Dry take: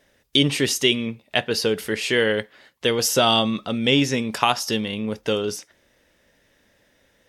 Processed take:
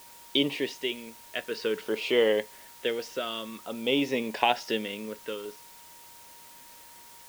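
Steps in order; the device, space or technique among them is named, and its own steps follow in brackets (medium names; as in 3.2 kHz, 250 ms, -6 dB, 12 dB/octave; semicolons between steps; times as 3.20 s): shortwave radio (band-pass 330–2700 Hz; tremolo 0.45 Hz, depth 73%; LFO notch saw down 0.55 Hz 670–2000 Hz; whistle 940 Hz -55 dBFS; white noise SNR 20 dB)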